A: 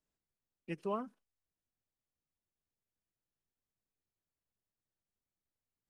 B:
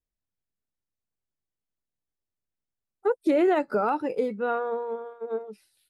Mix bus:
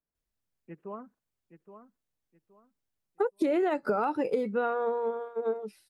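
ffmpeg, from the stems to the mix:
-filter_complex "[0:a]lowpass=f=1.9k:w=0.5412,lowpass=f=1.9k:w=1.3066,acontrast=36,volume=-9.5dB,asplit=2[a][b];[b]volume=-10.5dB[c];[1:a]adelay=150,volume=2.5dB[d];[c]aecho=0:1:821|1642|2463|3284:1|0.28|0.0784|0.022[e];[a][d][e]amix=inputs=3:normalize=0,acompressor=threshold=-24dB:ratio=6"

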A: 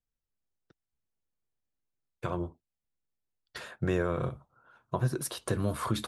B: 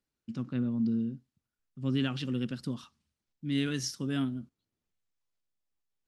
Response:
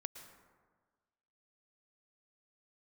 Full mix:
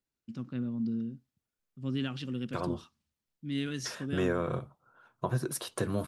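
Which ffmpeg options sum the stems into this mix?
-filter_complex "[0:a]highpass=110,adelay=300,volume=-0.5dB[a];[1:a]volume=-3.5dB[b];[a][b]amix=inputs=2:normalize=0"

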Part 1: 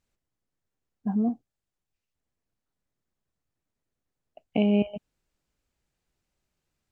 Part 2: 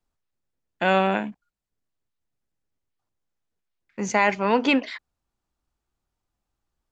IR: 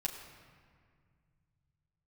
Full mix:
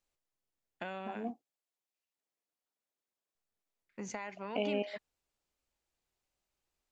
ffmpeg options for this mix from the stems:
-filter_complex "[0:a]highpass=440,equalizer=f=1.5k:t=o:w=0.77:g=-3.5,volume=-4dB[a];[1:a]acompressor=threshold=-26dB:ratio=12,volume=-11.5dB,asplit=3[b][c][d];[b]atrim=end=1.31,asetpts=PTS-STARTPTS,afade=t=out:st=1.306:d=0.004:c=hsin[e];[c]atrim=start=1.31:end=3.35,asetpts=PTS-STARTPTS,volume=0[f];[d]atrim=start=3.35,asetpts=PTS-STARTPTS,afade=t=in:d=0.004:c=hsin[g];[e][f][g]concat=n=3:v=0:a=1[h];[a][h]amix=inputs=2:normalize=0"

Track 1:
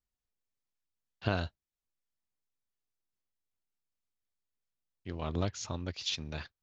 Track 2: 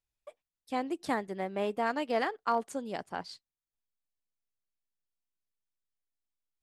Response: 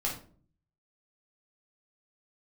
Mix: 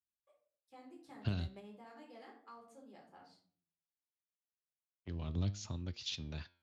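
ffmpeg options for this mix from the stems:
-filter_complex "[0:a]aemphasis=mode=reproduction:type=cd,agate=range=-15dB:threshold=-47dB:ratio=16:detection=peak,volume=3dB,asplit=2[a][b];[1:a]volume=-8dB,asplit=2[c][d];[d]volume=-13dB[e];[b]apad=whole_len=292150[f];[c][f]sidechaingate=range=-33dB:threshold=-48dB:ratio=16:detection=peak[g];[2:a]atrim=start_sample=2205[h];[e][h]afir=irnorm=-1:irlink=0[i];[a][g][i]amix=inputs=3:normalize=0,highpass=48,acrossover=split=250|3000[j][k][l];[k]acompressor=threshold=-50dB:ratio=3[m];[j][m][l]amix=inputs=3:normalize=0,flanger=delay=8.2:depth=7.2:regen=86:speed=0.34:shape=triangular"

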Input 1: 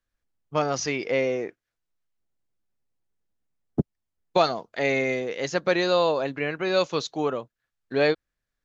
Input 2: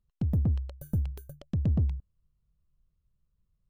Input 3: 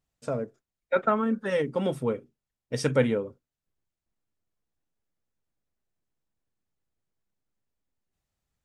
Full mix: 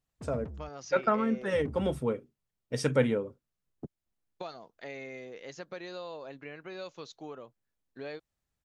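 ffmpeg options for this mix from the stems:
-filter_complex "[0:a]acompressor=threshold=-27dB:ratio=2.5,adelay=50,volume=-13.5dB[a];[1:a]afwtdn=0.0224,asplit=2[b][c];[c]highpass=f=720:p=1,volume=38dB,asoftclip=type=tanh:threshold=-19dB[d];[b][d]amix=inputs=2:normalize=0,lowpass=f=2.2k:p=1,volume=-6dB,volume=-17.5dB,asplit=3[e][f][g];[e]atrim=end=0.69,asetpts=PTS-STARTPTS,afade=t=out:st=0.686:d=0.004:c=hsin[h];[f]atrim=start=0.69:end=1.33,asetpts=PTS-STARTPTS,volume=0[i];[g]atrim=start=1.33,asetpts=PTS-STARTPTS,afade=t=in:d=0.004:c=hsin[j];[h][i][j]concat=n=3:v=0:a=1[k];[2:a]volume=-2.5dB[l];[a][k][l]amix=inputs=3:normalize=0"

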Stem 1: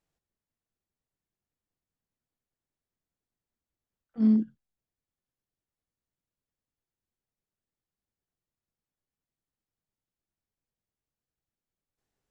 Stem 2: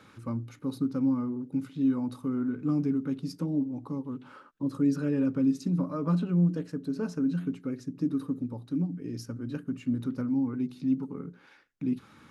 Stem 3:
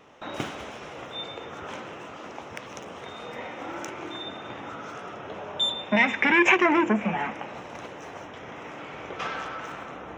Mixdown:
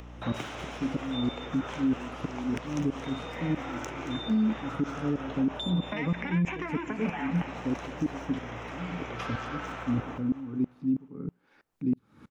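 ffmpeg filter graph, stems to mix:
-filter_complex "[0:a]adelay=100,volume=1dB[a];[1:a]tiltshelf=f=970:g=5.5,aeval=exprs='val(0)*pow(10,-27*if(lt(mod(-3.1*n/s,1),2*abs(-3.1)/1000),1-mod(-3.1*n/s,1)/(2*abs(-3.1)/1000),(mod(-3.1*n/s,1)-2*abs(-3.1)/1000)/(1-2*abs(-3.1)/1000))/20)':c=same,volume=2.5dB[b];[2:a]acompressor=threshold=-23dB:ratio=6,aeval=exprs='val(0)+0.00794*(sin(2*PI*60*n/s)+sin(2*PI*2*60*n/s)/2+sin(2*PI*3*60*n/s)/3+sin(2*PI*4*60*n/s)/4+sin(2*PI*5*60*n/s)/5)':c=same,acrossover=split=270|1100[c][d][e];[c]acompressor=threshold=-43dB:ratio=4[f];[d]acompressor=threshold=-40dB:ratio=4[g];[e]acompressor=threshold=-38dB:ratio=4[h];[f][g][h]amix=inputs=3:normalize=0,volume=0dB,asplit=2[i][j];[j]volume=-13.5dB,aecho=0:1:226|452|678|904|1130|1356|1582:1|0.5|0.25|0.125|0.0625|0.0312|0.0156[k];[a][b][i][k]amix=inputs=4:normalize=0,acompressor=mode=upward:threshold=-48dB:ratio=2.5,alimiter=limit=-19.5dB:level=0:latency=1:release=40"

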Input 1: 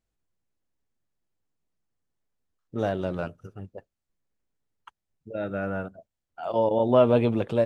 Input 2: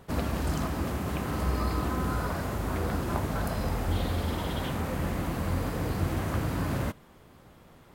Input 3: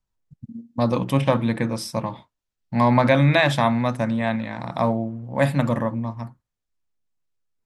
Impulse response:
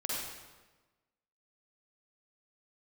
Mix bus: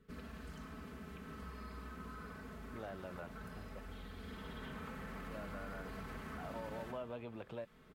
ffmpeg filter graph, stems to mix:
-filter_complex "[0:a]acompressor=threshold=-47dB:ratio=1.5,volume=-2.5dB[a];[1:a]aecho=1:1:4.6:0.75,volume=-7.5dB,afade=t=in:st=4.16:d=0.65:silence=0.334965,asplit=2[b][c];[c]volume=-9.5dB[d];[b]asuperstop=centerf=790:order=4:qfactor=1.4,alimiter=level_in=8dB:limit=-24dB:level=0:latency=1,volume=-8dB,volume=0dB[e];[3:a]atrim=start_sample=2205[f];[d][f]afir=irnorm=-1:irlink=0[g];[a][e][g]amix=inputs=3:normalize=0,highshelf=f=3.9k:g=-11.5,acrossover=split=750|1700[h][i][j];[h]acompressor=threshold=-48dB:ratio=4[k];[i]acompressor=threshold=-49dB:ratio=4[l];[j]acompressor=threshold=-58dB:ratio=4[m];[k][l][m]amix=inputs=3:normalize=0"

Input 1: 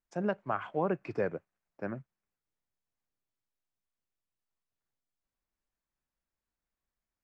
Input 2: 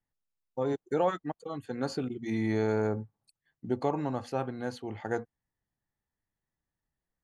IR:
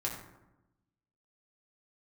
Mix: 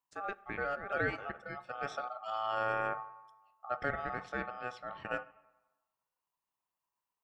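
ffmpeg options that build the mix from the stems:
-filter_complex "[0:a]lowshelf=f=230:g=8.5,crystalizer=i=2:c=0,volume=-8dB,asplit=2[a][b];[b]volume=-21.5dB[c];[1:a]lowpass=4.6k,volume=-3.5dB,asplit=3[d][e][f];[e]volume=-16dB[g];[f]apad=whole_len=319196[h];[a][h]sidechaincompress=threshold=-38dB:ratio=8:attack=6:release=476[i];[2:a]atrim=start_sample=2205[j];[c][g]amix=inputs=2:normalize=0[k];[k][j]afir=irnorm=-1:irlink=0[l];[i][d][l]amix=inputs=3:normalize=0,lowshelf=f=150:g=-4,aeval=exprs='val(0)*sin(2*PI*990*n/s)':c=same"

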